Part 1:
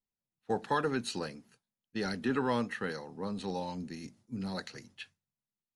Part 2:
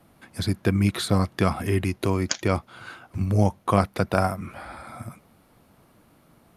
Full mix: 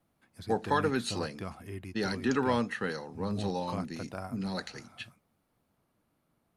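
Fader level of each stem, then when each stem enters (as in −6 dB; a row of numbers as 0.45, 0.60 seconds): +2.5, −18.0 decibels; 0.00, 0.00 seconds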